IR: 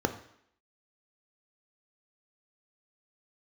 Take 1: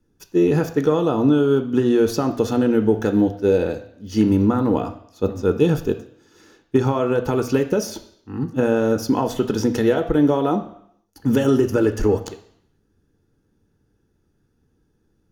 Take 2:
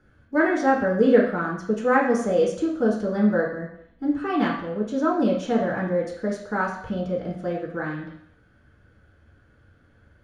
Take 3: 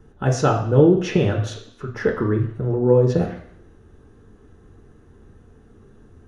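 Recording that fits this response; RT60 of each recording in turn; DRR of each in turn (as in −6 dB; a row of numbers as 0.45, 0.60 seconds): 1; 0.70, 0.70, 0.70 seconds; 6.5, −3.5, 0.5 decibels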